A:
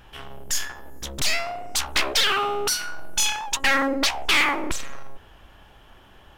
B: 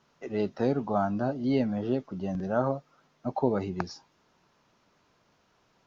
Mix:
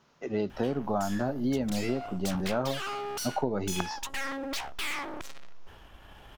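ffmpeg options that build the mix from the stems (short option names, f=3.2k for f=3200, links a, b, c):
-filter_complex "[0:a]alimiter=limit=-22.5dB:level=0:latency=1:release=245,tremolo=f=1.2:d=0.33,aeval=exprs='(tanh(56.2*val(0)+0.45)-tanh(0.45))/56.2':c=same,adelay=500,volume=2.5dB[a];[1:a]volume=2.5dB[b];[a][b]amix=inputs=2:normalize=0,acompressor=threshold=-25dB:ratio=6"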